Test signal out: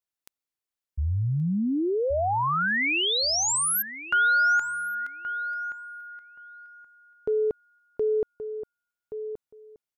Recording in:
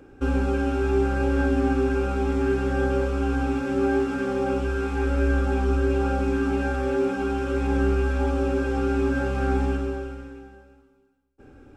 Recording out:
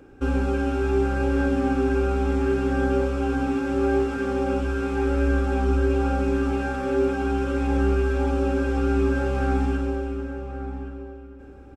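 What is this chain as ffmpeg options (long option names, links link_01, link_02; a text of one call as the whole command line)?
ffmpeg -i in.wav -filter_complex "[0:a]asplit=2[link_01][link_02];[link_02]adelay=1125,lowpass=frequency=1700:poles=1,volume=-9.5dB,asplit=2[link_03][link_04];[link_04]adelay=1125,lowpass=frequency=1700:poles=1,volume=0.18,asplit=2[link_05][link_06];[link_06]adelay=1125,lowpass=frequency=1700:poles=1,volume=0.18[link_07];[link_01][link_03][link_05][link_07]amix=inputs=4:normalize=0" out.wav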